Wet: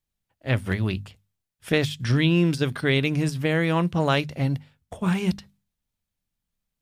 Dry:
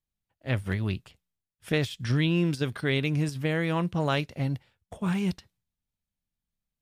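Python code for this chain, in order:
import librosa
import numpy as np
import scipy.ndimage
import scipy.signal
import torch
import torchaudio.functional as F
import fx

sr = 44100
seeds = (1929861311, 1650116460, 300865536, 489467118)

y = fx.hum_notches(x, sr, base_hz=50, count=5)
y = y * 10.0 ** (5.0 / 20.0)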